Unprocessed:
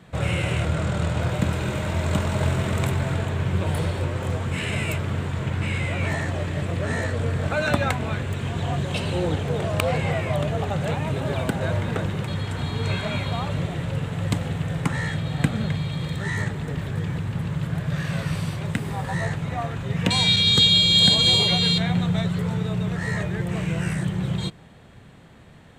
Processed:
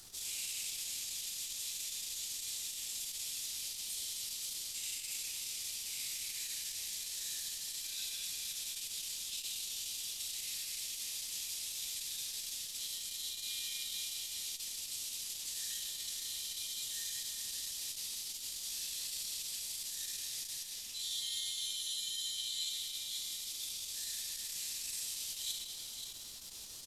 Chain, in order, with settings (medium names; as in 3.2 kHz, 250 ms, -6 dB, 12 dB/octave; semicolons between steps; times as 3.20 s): companded quantiser 4-bit; hard clipper -22 dBFS, distortion -8 dB; inverse Chebyshev high-pass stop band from 1 kHz, stop band 70 dB; reverse; compression 6:1, threshold -45 dBFS, peak gain reduction 16.5 dB; reverse; speed mistake 25 fps video run at 24 fps; on a send: multi-tap echo 59/530 ms -17.5/-8 dB; on the sum: formant-preserving pitch shift -9 st; simulated room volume 220 m³, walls hard, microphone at 0.8 m; added noise pink -71 dBFS; gain riding within 3 dB 2 s; transformer saturation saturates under 990 Hz; trim +6.5 dB